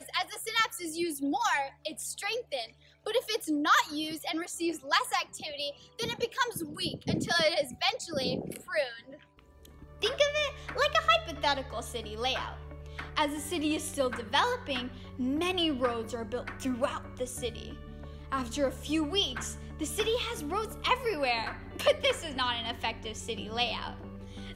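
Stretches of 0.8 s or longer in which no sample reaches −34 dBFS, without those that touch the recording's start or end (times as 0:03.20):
0:08.90–0:10.02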